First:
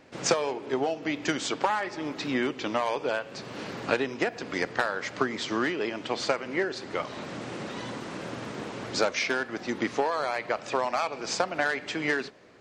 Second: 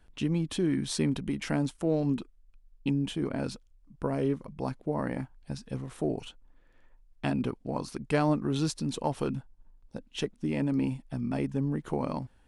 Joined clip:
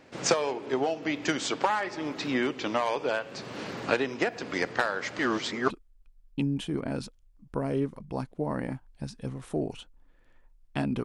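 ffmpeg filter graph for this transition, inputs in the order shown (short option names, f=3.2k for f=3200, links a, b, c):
-filter_complex "[0:a]apad=whole_dur=11.04,atrim=end=11.04,asplit=2[a][b];[a]atrim=end=5.192[c];[b]atrim=start=5.188:end=5.702,asetpts=PTS-STARTPTS,areverse[d];[1:a]atrim=start=2.178:end=7.52[e];[c][d]acrossfade=d=0.004:c1=hsin:c2=hsin[f];[f][e]acrossfade=d=0.004:c1=hsin:c2=hsin"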